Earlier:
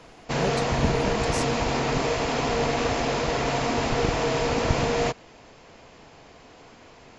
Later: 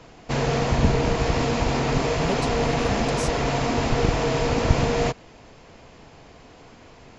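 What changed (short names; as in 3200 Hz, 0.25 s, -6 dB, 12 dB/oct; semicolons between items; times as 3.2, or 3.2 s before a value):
speech: entry +1.85 s; master: add low shelf 220 Hz +6.5 dB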